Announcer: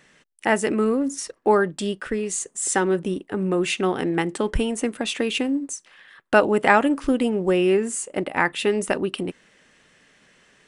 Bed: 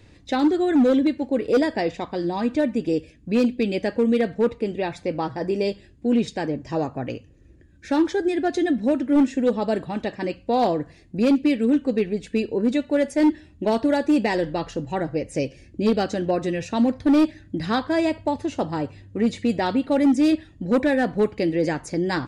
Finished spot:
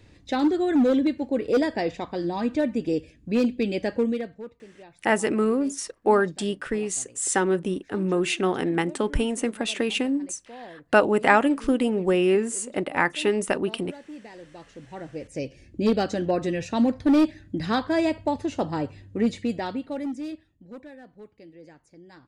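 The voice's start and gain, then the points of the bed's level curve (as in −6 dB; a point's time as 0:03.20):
4.60 s, −1.5 dB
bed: 0:04.01 −2.5 dB
0:04.54 −22 dB
0:14.33 −22 dB
0:15.75 −1.5 dB
0:19.23 −1.5 dB
0:21.00 −25.5 dB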